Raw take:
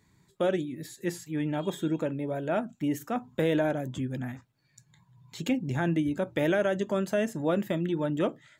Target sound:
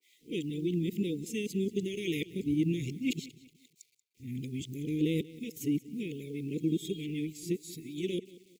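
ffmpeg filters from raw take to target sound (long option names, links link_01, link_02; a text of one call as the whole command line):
ffmpeg -i in.wav -filter_complex "[0:a]areverse,acrossover=split=580[link_01][link_02];[link_01]aeval=exprs='val(0)*(1-0.5/2+0.5/2*cos(2*PI*1.2*n/s))':channel_layout=same[link_03];[link_02]aeval=exprs='val(0)*(1-0.5/2-0.5/2*cos(2*PI*1.2*n/s))':channel_layout=same[link_04];[link_03][link_04]amix=inputs=2:normalize=0,acrusher=bits=10:mix=0:aa=0.000001,acrossover=split=380|4700[link_05][link_06][link_07];[link_05]aeval=exprs='sgn(val(0))*max(abs(val(0))-0.00112,0)':channel_layout=same[link_08];[link_08][link_06][link_07]amix=inputs=3:normalize=0,asuperstop=centerf=990:order=20:qfactor=0.59,asplit=2[link_09][link_10];[link_10]aecho=0:1:184|368|552:0.112|0.0426|0.0162[link_11];[link_09][link_11]amix=inputs=2:normalize=0,adynamicequalizer=threshold=0.00141:dfrequency=2600:dqfactor=0.7:tfrequency=2600:tqfactor=0.7:attack=5:release=100:ratio=0.375:range=1.5:mode=boostabove:tftype=highshelf" out.wav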